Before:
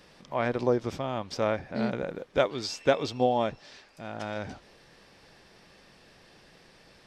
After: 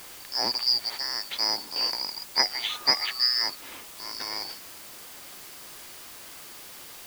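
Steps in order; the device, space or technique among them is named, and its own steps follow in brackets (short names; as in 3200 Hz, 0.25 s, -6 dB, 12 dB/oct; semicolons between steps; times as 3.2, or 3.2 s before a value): split-band scrambled radio (four-band scrambler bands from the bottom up 2341; BPF 340–3200 Hz; white noise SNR 14 dB); gain +8.5 dB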